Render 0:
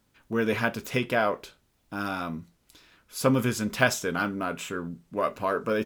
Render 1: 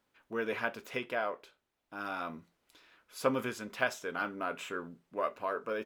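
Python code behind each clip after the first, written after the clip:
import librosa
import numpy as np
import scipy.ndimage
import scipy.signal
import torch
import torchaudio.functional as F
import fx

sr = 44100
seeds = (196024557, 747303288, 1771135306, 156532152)

y = fx.bass_treble(x, sr, bass_db=-14, treble_db=-8)
y = fx.rider(y, sr, range_db=3, speed_s=0.5)
y = F.gain(torch.from_numpy(y), -6.0).numpy()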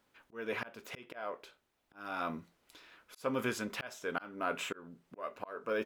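y = fx.auto_swell(x, sr, attack_ms=386.0)
y = F.gain(torch.from_numpy(y), 4.0).numpy()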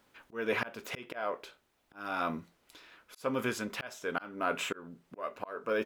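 y = fx.rider(x, sr, range_db=4, speed_s=2.0)
y = F.gain(torch.from_numpy(y), 3.0).numpy()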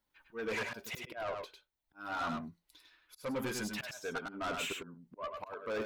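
y = fx.bin_expand(x, sr, power=1.5)
y = 10.0 ** (-37.0 / 20.0) * np.tanh(y / 10.0 ** (-37.0 / 20.0))
y = y + 10.0 ** (-4.5 / 20.0) * np.pad(y, (int(101 * sr / 1000.0), 0))[:len(y)]
y = F.gain(torch.from_numpy(y), 3.5).numpy()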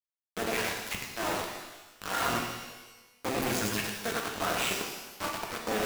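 y = fx.cycle_switch(x, sr, every=2, mode='muted')
y = fx.quant_companded(y, sr, bits=2)
y = fx.rev_shimmer(y, sr, seeds[0], rt60_s=1.1, semitones=12, shimmer_db=-8, drr_db=1.0)
y = F.gain(torch.from_numpy(y), -1.5).numpy()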